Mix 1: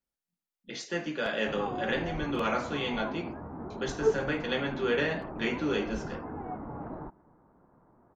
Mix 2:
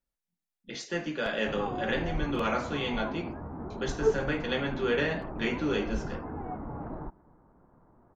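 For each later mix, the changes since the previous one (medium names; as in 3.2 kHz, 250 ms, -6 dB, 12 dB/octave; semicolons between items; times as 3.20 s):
master: add bass shelf 67 Hz +11 dB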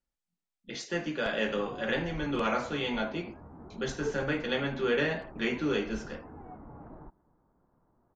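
background -9.5 dB; master: add brick-wall FIR low-pass 9.1 kHz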